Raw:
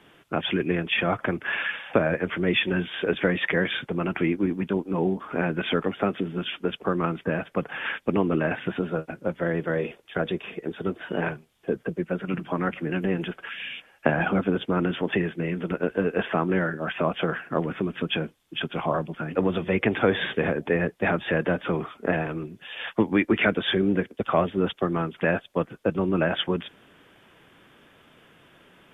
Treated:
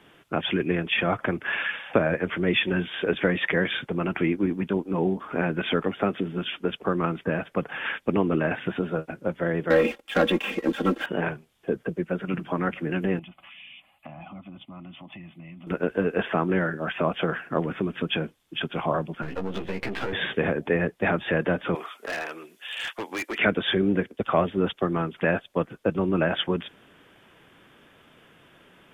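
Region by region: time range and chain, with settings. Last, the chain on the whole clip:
9.70–11.06 s: peaking EQ 91 Hz -11.5 dB 0.79 oct + waveshaping leveller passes 2 + comb 3.7 ms, depth 80%
13.19–15.67 s: static phaser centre 1.6 kHz, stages 6 + comb of notches 460 Hz + compression 2.5:1, threshold -46 dBFS
19.22–20.13 s: partial rectifier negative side -12 dB + compression 10:1, threshold -26 dBFS + doubling 15 ms -2.5 dB
21.75–23.38 s: high-pass 400 Hz + tilt EQ +3 dB/octave + hard clipper -27 dBFS
whole clip: none

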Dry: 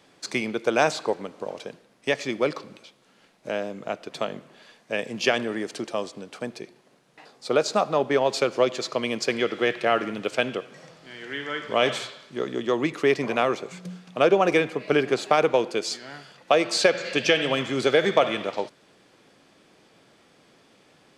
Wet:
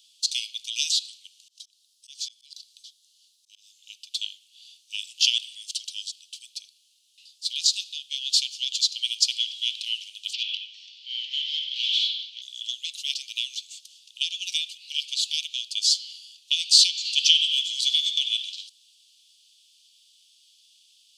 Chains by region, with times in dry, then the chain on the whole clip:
1.48–3.79 s: high-order bell 1.4 kHz -9.5 dB 2.5 oct + slow attack 187 ms
10.33–12.42 s: overdrive pedal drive 29 dB, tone 1.1 kHz, clips at -6.5 dBFS + distance through air 220 m
whole clip: steep high-pass 2.9 kHz 72 dB/octave; dynamic bell 3.9 kHz, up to +5 dB, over -46 dBFS, Q 0.78; trim +6.5 dB

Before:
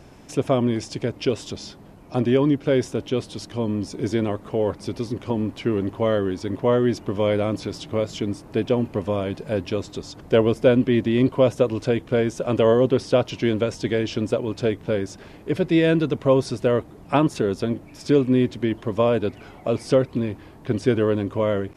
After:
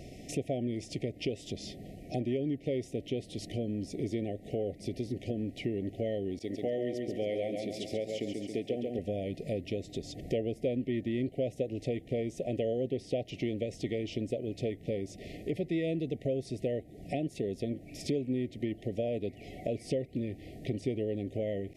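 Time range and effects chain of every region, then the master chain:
6.39–8.99 s: high-pass 310 Hz 6 dB/octave + expander -40 dBFS + feedback delay 137 ms, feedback 41%, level -5 dB
whole clip: dynamic bell 5.3 kHz, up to -5 dB, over -47 dBFS, Q 0.92; compression 3:1, threshold -34 dBFS; FFT band-reject 770–1800 Hz

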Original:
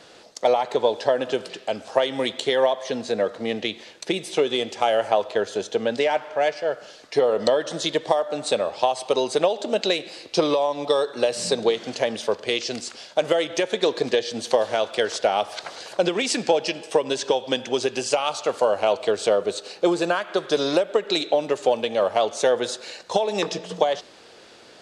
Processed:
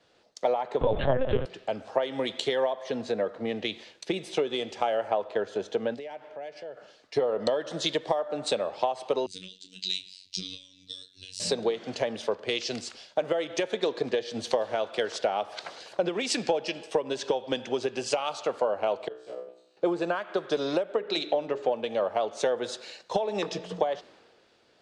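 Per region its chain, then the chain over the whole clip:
0.81–1.45 s: comb 7.5 ms, depth 90% + LPC vocoder at 8 kHz pitch kept + level flattener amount 50%
5.94–6.77 s: peaking EQ 1.2 kHz -7.5 dB 1.1 oct + compression 5:1, threshold -32 dBFS
9.26–11.40 s: Chebyshev band-stop 150–4000 Hz + doubling 29 ms -10 dB + robot voice 93.4 Hz
19.08–19.77 s: feedback comb 63 Hz, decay 0.8 s, mix 100% + compression 1.5:1, threshold -44 dBFS + transient shaper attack +9 dB, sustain -10 dB
20.95–21.69 s: low-pass 6.2 kHz + hum notches 60/120/180/240/300/360/420/480/540 Hz
whole clip: low-pass 2.9 kHz 6 dB/octave; compression 3:1, threshold -27 dBFS; three bands expanded up and down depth 70%; trim +1 dB

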